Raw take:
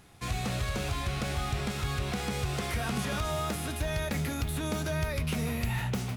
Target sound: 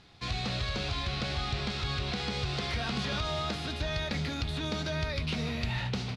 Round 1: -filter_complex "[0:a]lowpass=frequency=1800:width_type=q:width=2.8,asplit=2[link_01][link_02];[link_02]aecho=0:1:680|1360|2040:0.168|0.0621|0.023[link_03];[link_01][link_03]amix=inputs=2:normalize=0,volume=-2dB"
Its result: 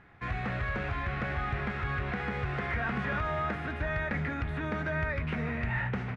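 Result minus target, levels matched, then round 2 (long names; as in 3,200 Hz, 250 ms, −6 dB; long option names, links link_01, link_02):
4,000 Hz band −15.5 dB
-filter_complex "[0:a]lowpass=frequency=4300:width_type=q:width=2.8,asplit=2[link_01][link_02];[link_02]aecho=0:1:680|1360|2040:0.168|0.0621|0.023[link_03];[link_01][link_03]amix=inputs=2:normalize=0,volume=-2dB"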